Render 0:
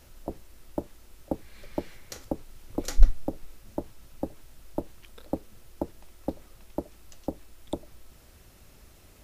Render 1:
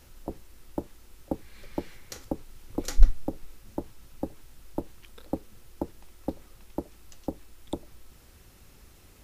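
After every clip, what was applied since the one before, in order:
parametric band 630 Hz −7 dB 0.21 octaves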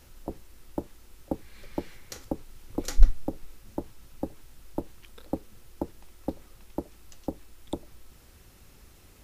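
no processing that can be heard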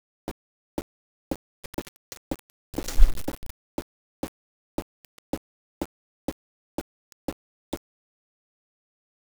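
bit-depth reduction 6 bits, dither none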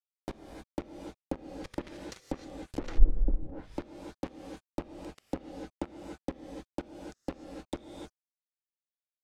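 reverb whose tail is shaped and stops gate 330 ms rising, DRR 3 dB
treble cut that deepens with the level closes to 430 Hz, closed at −22 dBFS
level −4 dB

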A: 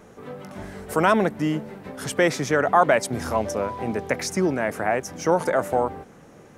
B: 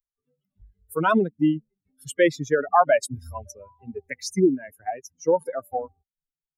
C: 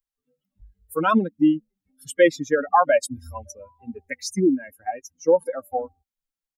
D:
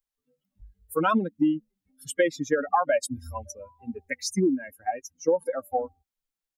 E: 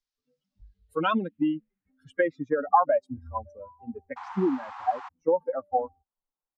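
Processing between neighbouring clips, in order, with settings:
spectral dynamics exaggerated over time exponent 3; dynamic equaliser 340 Hz, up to +6 dB, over −38 dBFS, Q 0.85; level +1.5 dB
comb filter 3.7 ms, depth 59%
downward compressor 6 to 1, threshold −19 dBFS, peak gain reduction 9 dB
sound drawn into the spectrogram noise, 0:04.16–0:05.09, 710–8,000 Hz −33 dBFS; low-pass filter sweep 5,100 Hz → 980 Hz, 0:00.52–0:02.68; level −3 dB

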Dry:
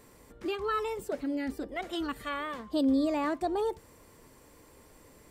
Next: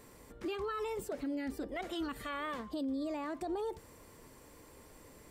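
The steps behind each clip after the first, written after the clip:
brickwall limiter −30.5 dBFS, peak gain reduction 11.5 dB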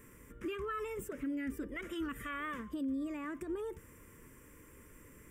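phaser with its sweep stopped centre 1,800 Hz, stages 4
level +2 dB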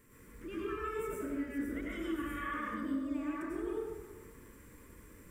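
surface crackle 460 per second −57 dBFS
dense smooth reverb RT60 1.4 s, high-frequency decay 0.5×, pre-delay 80 ms, DRR −7 dB
level −7 dB

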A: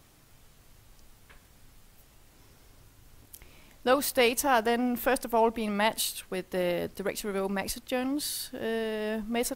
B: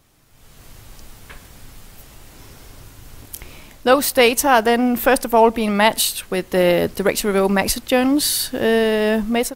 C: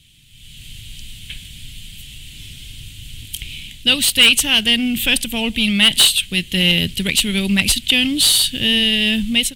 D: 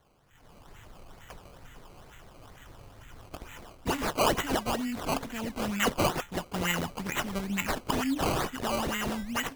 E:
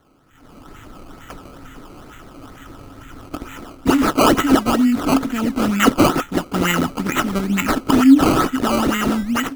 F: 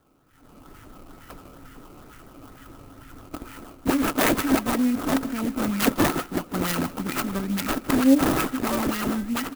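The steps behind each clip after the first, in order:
automatic gain control gain up to 15 dB
drawn EQ curve 170 Hz 0 dB, 470 Hz −21 dB, 740 Hz −24 dB, 1,200 Hz −25 dB, 3,100 Hz +15 dB, 5,400 Hz −1 dB, 8,400 Hz +8 dB, 14,000 Hz +1 dB; harmonic generator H 5 −7 dB, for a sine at 3.5 dBFS; high-shelf EQ 5,600 Hz −8 dB; level −4 dB
tuned comb filter 270 Hz, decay 0.2 s, harmonics odd, mix 70%; sample-and-hold swept by an LFO 17×, swing 100% 2.2 Hz; level −5.5 dB
automatic gain control gain up to 3 dB; hollow resonant body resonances 280/1,300 Hz, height 13 dB, ringing for 35 ms; level +5.5 dB
phase distortion by the signal itself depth 0.38 ms; repeating echo 157 ms, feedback 32%, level −19 dB; converter with an unsteady clock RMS 0.045 ms; level −6.5 dB

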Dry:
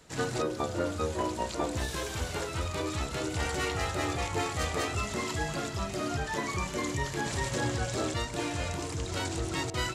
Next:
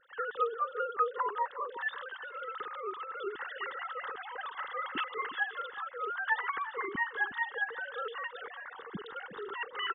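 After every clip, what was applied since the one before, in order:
three sine waves on the formant tracks
phaser with its sweep stopped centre 2,400 Hz, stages 6
slap from a distant wall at 62 metres, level −13 dB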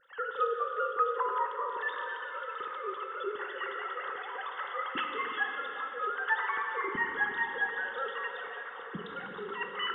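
dense smooth reverb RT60 3.7 s, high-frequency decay 0.75×, DRR 2.5 dB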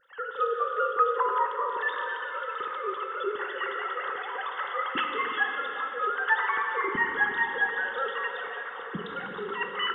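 automatic gain control gain up to 5 dB

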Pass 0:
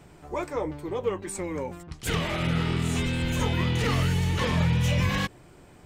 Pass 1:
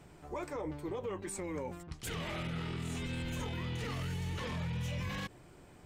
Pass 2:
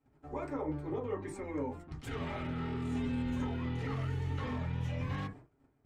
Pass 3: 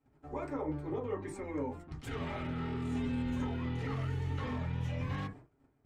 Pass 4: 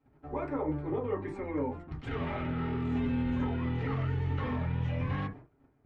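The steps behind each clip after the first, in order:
brickwall limiter −25.5 dBFS, peak gain reduction 11 dB; level −5 dB
low-pass filter 3,100 Hz 6 dB per octave; noise gate −53 dBFS, range −21 dB; convolution reverb, pre-delay 4 ms, DRR −3.5 dB; level −4.5 dB
no processing that can be heard
low-pass filter 2,900 Hz 12 dB per octave; level +4 dB

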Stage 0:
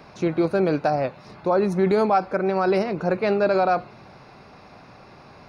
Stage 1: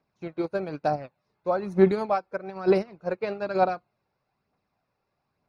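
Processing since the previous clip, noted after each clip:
phase shifter 1.1 Hz, delay 2.4 ms, feedback 36%
expander for the loud parts 2.5 to 1, over −35 dBFS
level +1 dB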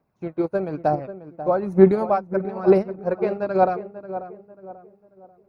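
parametric band 4,200 Hz −12.5 dB 2.4 octaves
on a send: feedback echo with a low-pass in the loop 539 ms, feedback 39%, low-pass 1,300 Hz, level −11.5 dB
on the sum: level +6 dB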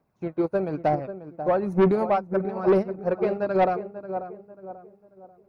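soft clipping −13.5 dBFS, distortion −10 dB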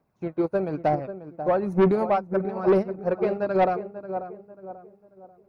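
no processing that can be heard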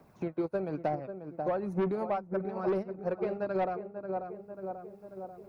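multiband upward and downward compressor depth 70%
level −8.5 dB

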